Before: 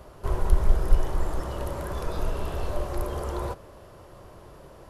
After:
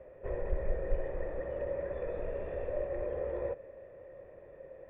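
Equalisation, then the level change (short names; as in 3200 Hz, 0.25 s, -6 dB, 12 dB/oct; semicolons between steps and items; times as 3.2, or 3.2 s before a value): vocal tract filter e; +6.5 dB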